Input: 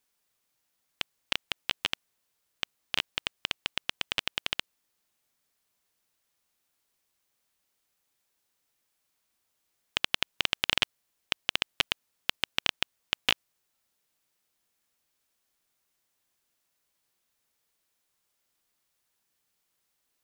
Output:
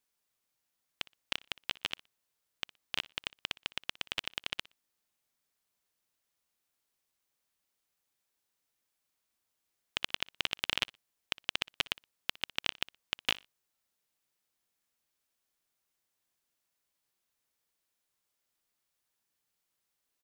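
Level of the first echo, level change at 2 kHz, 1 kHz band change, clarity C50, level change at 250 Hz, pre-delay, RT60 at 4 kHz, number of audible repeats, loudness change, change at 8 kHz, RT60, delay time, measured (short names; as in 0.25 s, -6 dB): -21.5 dB, -5.5 dB, -5.5 dB, none, -5.5 dB, none, none, 1, -5.5 dB, -5.5 dB, none, 60 ms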